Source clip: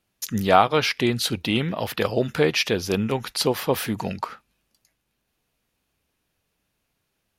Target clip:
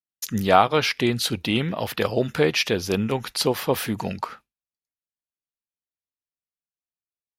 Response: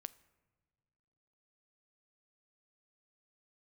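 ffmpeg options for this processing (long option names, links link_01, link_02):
-af "agate=range=-33dB:threshold=-40dB:ratio=3:detection=peak"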